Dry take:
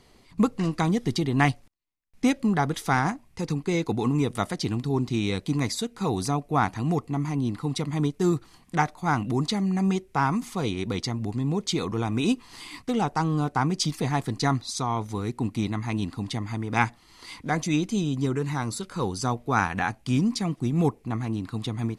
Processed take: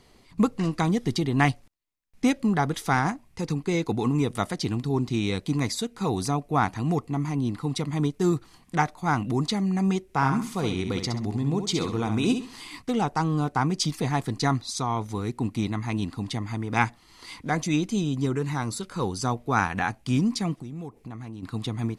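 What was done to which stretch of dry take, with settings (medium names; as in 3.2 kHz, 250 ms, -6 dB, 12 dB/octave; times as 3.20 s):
10.03–12.61 s: feedback delay 66 ms, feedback 30%, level -7.5 dB
20.61–21.43 s: compression 5:1, threshold -35 dBFS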